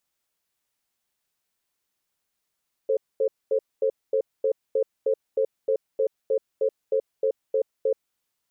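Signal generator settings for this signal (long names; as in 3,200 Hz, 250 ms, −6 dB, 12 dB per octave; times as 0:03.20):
tone pair in a cadence 442 Hz, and 532 Hz, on 0.08 s, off 0.23 s, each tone −22 dBFS 5.22 s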